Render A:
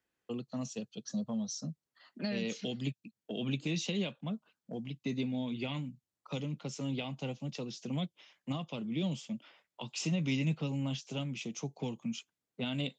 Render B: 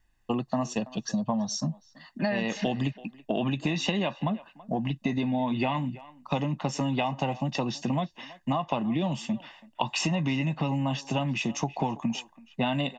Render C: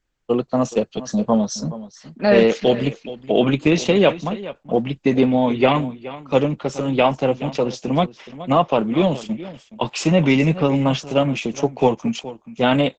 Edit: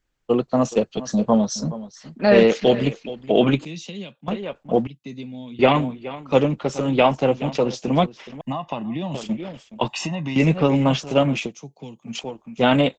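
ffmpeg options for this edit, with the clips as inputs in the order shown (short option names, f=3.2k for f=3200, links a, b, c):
-filter_complex "[0:a]asplit=3[a][b][c];[1:a]asplit=2[d][e];[2:a]asplit=6[f][g][h][i][j][k];[f]atrim=end=3.652[l];[a]atrim=start=3.648:end=4.282[m];[g]atrim=start=4.278:end=4.872[n];[b]atrim=start=4.868:end=5.592[o];[h]atrim=start=5.588:end=8.412[p];[d]atrim=start=8.408:end=9.142[q];[i]atrim=start=9.138:end=9.882[r];[e]atrim=start=9.878:end=10.362[s];[j]atrim=start=10.358:end=11.53[t];[c]atrim=start=11.43:end=12.16[u];[k]atrim=start=12.06[v];[l][m]acrossfade=d=0.004:c1=hsin:c2=hsin[w];[w][n]acrossfade=d=0.004:c1=hsin:c2=hsin[x];[x][o]acrossfade=d=0.004:c1=hsin:c2=hsin[y];[y][p]acrossfade=d=0.004:c1=hsin:c2=hsin[z];[z][q]acrossfade=d=0.004:c1=hsin:c2=hsin[aa];[aa][r]acrossfade=d=0.004:c1=hsin:c2=hsin[ab];[ab][s]acrossfade=d=0.004:c1=hsin:c2=hsin[ac];[ac][t]acrossfade=d=0.004:c1=hsin:c2=hsin[ad];[ad][u]acrossfade=d=0.1:c1=tri:c2=tri[ae];[ae][v]acrossfade=d=0.1:c1=tri:c2=tri"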